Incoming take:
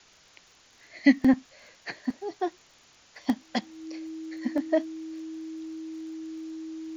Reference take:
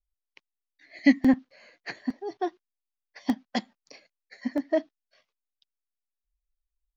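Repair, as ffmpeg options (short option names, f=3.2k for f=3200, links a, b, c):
-af "adeclick=t=4,bandreject=f=320:w=30,afwtdn=0.002"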